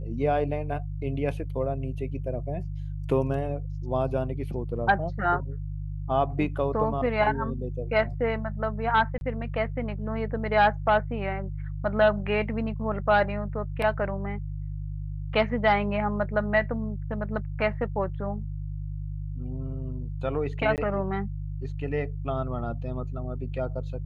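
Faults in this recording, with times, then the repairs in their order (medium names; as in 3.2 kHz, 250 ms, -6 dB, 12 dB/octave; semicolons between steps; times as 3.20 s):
hum 50 Hz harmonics 3 -33 dBFS
9.18–9.21 s: dropout 31 ms
20.76–20.78 s: dropout 18 ms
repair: de-hum 50 Hz, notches 3; interpolate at 9.18 s, 31 ms; interpolate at 20.76 s, 18 ms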